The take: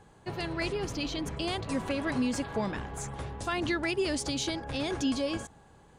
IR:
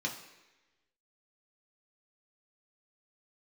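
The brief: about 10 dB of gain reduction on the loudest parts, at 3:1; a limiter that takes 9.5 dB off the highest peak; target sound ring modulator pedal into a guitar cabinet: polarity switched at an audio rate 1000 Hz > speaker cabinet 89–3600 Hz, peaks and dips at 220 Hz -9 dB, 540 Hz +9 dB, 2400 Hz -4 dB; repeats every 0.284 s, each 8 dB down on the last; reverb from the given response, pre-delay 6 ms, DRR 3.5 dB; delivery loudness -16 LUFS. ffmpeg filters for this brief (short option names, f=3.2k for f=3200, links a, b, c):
-filter_complex "[0:a]acompressor=threshold=-39dB:ratio=3,alimiter=level_in=12dB:limit=-24dB:level=0:latency=1,volume=-12dB,aecho=1:1:284|568|852|1136|1420:0.398|0.159|0.0637|0.0255|0.0102,asplit=2[a][b];[1:a]atrim=start_sample=2205,adelay=6[c];[b][c]afir=irnorm=-1:irlink=0,volume=-7dB[d];[a][d]amix=inputs=2:normalize=0,aeval=exprs='val(0)*sgn(sin(2*PI*1000*n/s))':c=same,highpass=89,equalizer=f=220:t=q:w=4:g=-9,equalizer=f=540:t=q:w=4:g=9,equalizer=f=2.4k:t=q:w=4:g=-4,lowpass=f=3.6k:w=0.5412,lowpass=f=3.6k:w=1.3066,volume=25dB"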